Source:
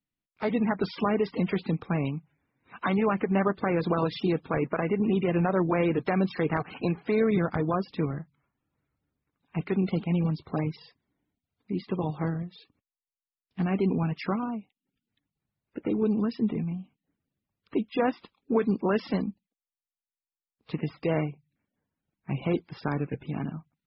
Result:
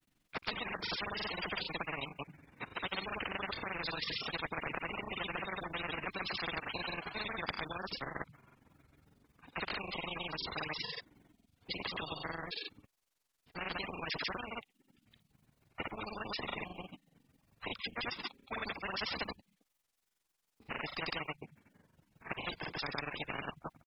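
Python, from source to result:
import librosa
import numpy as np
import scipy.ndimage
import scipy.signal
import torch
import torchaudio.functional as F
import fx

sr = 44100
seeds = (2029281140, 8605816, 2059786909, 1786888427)

y = fx.granulator(x, sr, seeds[0], grain_ms=65.0, per_s=22.0, spray_ms=100.0, spread_st=0)
y = fx.spectral_comp(y, sr, ratio=10.0)
y = y * librosa.db_to_amplitude(-3.0)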